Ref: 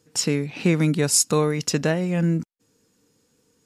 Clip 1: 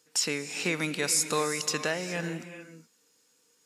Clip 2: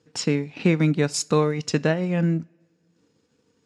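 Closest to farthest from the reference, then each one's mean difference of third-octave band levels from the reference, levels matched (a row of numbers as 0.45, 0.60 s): 2, 1; 3.0, 9.0 dB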